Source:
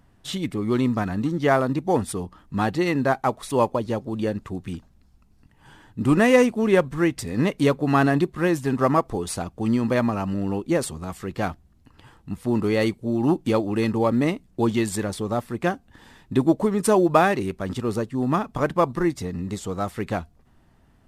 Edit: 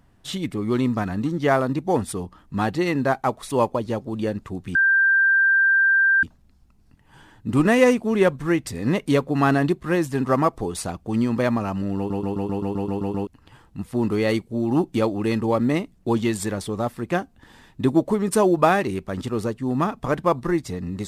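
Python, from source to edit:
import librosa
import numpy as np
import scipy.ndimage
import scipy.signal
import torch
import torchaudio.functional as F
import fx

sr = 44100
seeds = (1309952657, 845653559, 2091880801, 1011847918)

y = fx.edit(x, sr, fx.insert_tone(at_s=4.75, length_s=1.48, hz=1580.0, db=-14.0),
    fx.stutter_over(start_s=10.49, slice_s=0.13, count=10), tone=tone)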